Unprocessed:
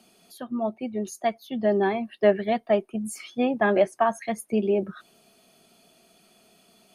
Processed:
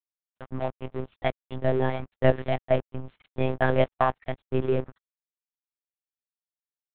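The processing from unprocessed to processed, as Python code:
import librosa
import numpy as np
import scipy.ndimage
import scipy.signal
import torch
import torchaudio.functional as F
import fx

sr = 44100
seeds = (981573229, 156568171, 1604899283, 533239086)

y = np.sign(x) * np.maximum(np.abs(x) - 10.0 ** (-36.0 / 20.0), 0.0)
y = fx.lpc_monotone(y, sr, seeds[0], pitch_hz=130.0, order=10)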